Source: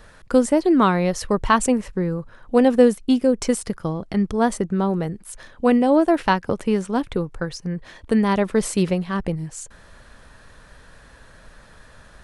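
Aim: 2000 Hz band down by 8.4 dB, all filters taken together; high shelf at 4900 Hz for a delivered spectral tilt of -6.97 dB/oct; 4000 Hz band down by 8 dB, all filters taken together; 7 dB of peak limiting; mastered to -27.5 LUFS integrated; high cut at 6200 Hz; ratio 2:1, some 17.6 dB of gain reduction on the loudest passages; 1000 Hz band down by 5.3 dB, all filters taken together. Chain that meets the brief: LPF 6200 Hz; bell 1000 Hz -4.5 dB; bell 2000 Hz -8 dB; bell 4000 Hz -5 dB; high shelf 4900 Hz -3.5 dB; compressor 2:1, threshold -43 dBFS; gain +10.5 dB; limiter -17 dBFS

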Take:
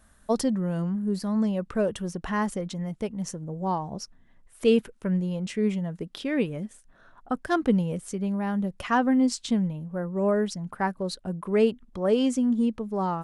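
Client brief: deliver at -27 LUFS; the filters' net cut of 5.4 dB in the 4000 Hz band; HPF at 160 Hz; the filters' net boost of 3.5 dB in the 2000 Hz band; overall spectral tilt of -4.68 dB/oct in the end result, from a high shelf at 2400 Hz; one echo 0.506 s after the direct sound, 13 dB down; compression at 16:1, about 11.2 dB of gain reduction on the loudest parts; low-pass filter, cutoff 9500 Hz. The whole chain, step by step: HPF 160 Hz; LPF 9500 Hz; bell 2000 Hz +8.5 dB; high shelf 2400 Hz -7 dB; bell 4000 Hz -4.5 dB; compressor 16:1, threshold -27 dBFS; echo 0.506 s -13 dB; gain +6 dB

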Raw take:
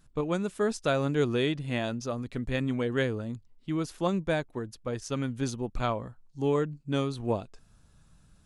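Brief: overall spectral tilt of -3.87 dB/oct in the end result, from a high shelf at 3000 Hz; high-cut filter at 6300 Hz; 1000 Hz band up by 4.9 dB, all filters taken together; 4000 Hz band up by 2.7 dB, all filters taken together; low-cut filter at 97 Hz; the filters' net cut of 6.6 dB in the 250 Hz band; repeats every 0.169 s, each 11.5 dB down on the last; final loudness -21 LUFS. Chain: HPF 97 Hz; LPF 6300 Hz; bell 250 Hz -9 dB; bell 1000 Hz +7.5 dB; high shelf 3000 Hz -6.5 dB; bell 4000 Hz +8 dB; feedback echo 0.169 s, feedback 27%, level -11.5 dB; gain +10.5 dB

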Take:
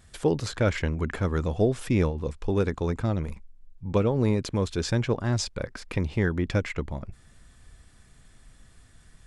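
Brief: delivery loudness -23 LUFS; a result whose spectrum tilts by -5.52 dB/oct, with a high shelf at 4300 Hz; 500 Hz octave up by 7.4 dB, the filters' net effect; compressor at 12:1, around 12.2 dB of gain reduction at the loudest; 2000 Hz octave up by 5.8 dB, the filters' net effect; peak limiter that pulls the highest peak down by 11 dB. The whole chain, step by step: bell 500 Hz +8.5 dB; bell 2000 Hz +8 dB; high shelf 4300 Hz -6.5 dB; compressor 12:1, threshold -24 dBFS; gain +11.5 dB; limiter -13 dBFS

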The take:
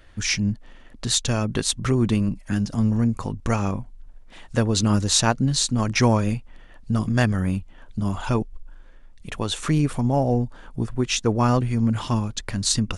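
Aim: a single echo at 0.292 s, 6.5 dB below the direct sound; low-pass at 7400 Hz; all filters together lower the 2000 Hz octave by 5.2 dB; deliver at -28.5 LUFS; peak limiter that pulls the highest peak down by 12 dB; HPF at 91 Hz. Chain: HPF 91 Hz; LPF 7400 Hz; bell 2000 Hz -7 dB; limiter -18 dBFS; echo 0.292 s -6.5 dB; gain -1 dB

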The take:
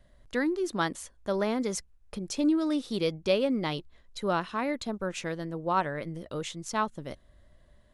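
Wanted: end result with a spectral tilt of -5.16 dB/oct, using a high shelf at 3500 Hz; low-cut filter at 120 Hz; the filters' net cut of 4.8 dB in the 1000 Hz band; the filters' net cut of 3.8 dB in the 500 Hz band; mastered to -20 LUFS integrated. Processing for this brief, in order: HPF 120 Hz; bell 500 Hz -3.5 dB; bell 1000 Hz -4.5 dB; high shelf 3500 Hz -5 dB; gain +13.5 dB

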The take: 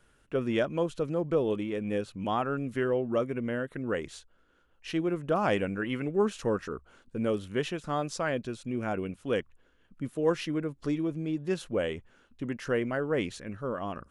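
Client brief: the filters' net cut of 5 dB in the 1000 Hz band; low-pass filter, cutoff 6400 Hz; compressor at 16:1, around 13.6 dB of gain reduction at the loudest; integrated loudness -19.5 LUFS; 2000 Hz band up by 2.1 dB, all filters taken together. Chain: LPF 6400 Hz; bell 1000 Hz -9 dB; bell 2000 Hz +6 dB; compressor 16:1, threshold -36 dBFS; gain +22 dB

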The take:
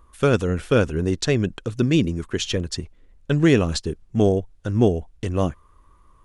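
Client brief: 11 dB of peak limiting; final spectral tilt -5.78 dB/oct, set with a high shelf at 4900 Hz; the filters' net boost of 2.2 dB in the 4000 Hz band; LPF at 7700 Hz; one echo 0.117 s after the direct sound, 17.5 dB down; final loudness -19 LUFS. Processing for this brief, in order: LPF 7700 Hz; bell 4000 Hz +5 dB; high shelf 4900 Hz -4.5 dB; limiter -14.5 dBFS; echo 0.117 s -17.5 dB; gain +7 dB

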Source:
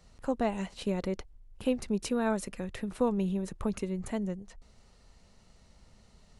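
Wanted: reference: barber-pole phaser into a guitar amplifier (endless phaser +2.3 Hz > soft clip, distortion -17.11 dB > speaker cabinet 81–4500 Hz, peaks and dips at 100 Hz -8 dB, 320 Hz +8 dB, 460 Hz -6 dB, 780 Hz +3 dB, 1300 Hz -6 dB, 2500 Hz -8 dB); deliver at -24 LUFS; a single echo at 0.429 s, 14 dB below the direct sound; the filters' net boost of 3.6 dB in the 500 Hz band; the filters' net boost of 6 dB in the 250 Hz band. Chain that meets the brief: bell 250 Hz +5.5 dB; bell 500 Hz +5 dB; echo 0.429 s -14 dB; endless phaser +2.3 Hz; soft clip -18 dBFS; speaker cabinet 81–4500 Hz, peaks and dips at 100 Hz -8 dB, 320 Hz +8 dB, 460 Hz -6 dB, 780 Hz +3 dB, 1300 Hz -6 dB, 2500 Hz -8 dB; gain +8 dB

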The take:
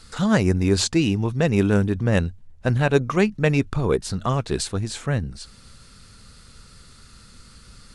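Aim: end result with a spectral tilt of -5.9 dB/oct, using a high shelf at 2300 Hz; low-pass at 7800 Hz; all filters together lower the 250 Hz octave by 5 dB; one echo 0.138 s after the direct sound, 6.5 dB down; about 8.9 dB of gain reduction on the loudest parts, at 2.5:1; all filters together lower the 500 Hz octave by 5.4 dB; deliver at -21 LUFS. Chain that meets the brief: LPF 7800 Hz; bell 250 Hz -6 dB; bell 500 Hz -4.5 dB; high shelf 2300 Hz -5 dB; compressor 2.5:1, threshold -31 dBFS; echo 0.138 s -6.5 dB; gain +11 dB

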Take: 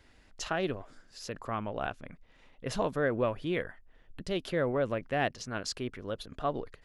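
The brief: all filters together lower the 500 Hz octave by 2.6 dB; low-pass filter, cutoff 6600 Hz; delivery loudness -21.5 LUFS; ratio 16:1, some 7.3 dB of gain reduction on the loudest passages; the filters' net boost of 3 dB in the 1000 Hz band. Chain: LPF 6600 Hz; bell 500 Hz -5 dB; bell 1000 Hz +6 dB; compressor 16:1, threshold -31 dBFS; gain +17 dB

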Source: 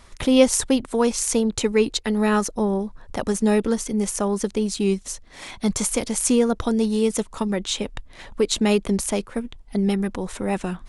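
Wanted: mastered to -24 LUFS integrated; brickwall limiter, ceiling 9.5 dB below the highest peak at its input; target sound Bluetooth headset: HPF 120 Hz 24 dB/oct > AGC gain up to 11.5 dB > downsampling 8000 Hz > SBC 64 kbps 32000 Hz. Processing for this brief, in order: limiter -12 dBFS; HPF 120 Hz 24 dB/oct; AGC gain up to 11.5 dB; downsampling 8000 Hz; gain +1 dB; SBC 64 kbps 32000 Hz

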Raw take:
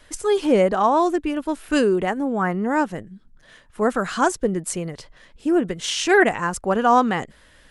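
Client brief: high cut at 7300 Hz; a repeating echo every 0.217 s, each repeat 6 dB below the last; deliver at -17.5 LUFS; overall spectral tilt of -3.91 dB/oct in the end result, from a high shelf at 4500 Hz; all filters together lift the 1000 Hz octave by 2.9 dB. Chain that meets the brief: LPF 7300 Hz; bell 1000 Hz +4 dB; high shelf 4500 Hz -6.5 dB; feedback echo 0.217 s, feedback 50%, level -6 dB; gain +1.5 dB

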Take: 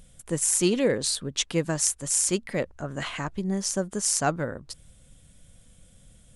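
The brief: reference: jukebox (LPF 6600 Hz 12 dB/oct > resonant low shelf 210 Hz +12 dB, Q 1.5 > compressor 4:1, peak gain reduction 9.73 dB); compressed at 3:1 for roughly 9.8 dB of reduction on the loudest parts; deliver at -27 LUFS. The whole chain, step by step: compressor 3:1, threshold -32 dBFS; LPF 6600 Hz 12 dB/oct; resonant low shelf 210 Hz +12 dB, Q 1.5; compressor 4:1, threshold -33 dBFS; gain +10.5 dB

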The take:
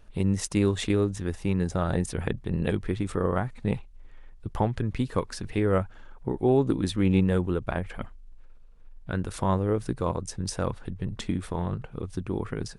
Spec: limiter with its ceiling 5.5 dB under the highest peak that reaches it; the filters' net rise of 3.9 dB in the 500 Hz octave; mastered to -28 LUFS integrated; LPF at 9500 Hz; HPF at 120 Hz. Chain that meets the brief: HPF 120 Hz; LPF 9500 Hz; bell 500 Hz +5 dB; limiter -13 dBFS

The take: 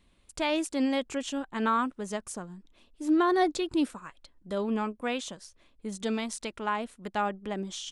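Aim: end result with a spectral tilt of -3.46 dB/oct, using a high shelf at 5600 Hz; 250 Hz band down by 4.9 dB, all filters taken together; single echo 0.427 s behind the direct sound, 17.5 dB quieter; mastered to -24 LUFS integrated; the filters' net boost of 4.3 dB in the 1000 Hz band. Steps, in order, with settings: bell 250 Hz -7 dB; bell 1000 Hz +6 dB; high shelf 5600 Hz -4.5 dB; echo 0.427 s -17.5 dB; gain +6 dB

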